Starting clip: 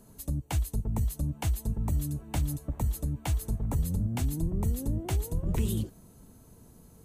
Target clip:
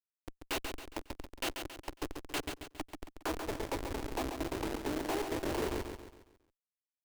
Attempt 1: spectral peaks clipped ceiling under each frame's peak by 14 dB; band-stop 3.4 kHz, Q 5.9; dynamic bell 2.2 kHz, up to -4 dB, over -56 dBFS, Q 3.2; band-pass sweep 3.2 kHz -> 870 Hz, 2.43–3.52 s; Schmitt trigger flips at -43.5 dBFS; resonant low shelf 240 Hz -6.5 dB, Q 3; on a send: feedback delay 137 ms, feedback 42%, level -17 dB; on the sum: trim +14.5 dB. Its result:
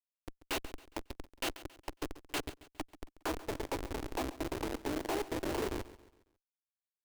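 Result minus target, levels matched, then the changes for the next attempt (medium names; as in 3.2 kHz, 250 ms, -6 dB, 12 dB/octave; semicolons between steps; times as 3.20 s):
echo-to-direct -10.5 dB
change: feedback delay 137 ms, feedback 42%, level -6.5 dB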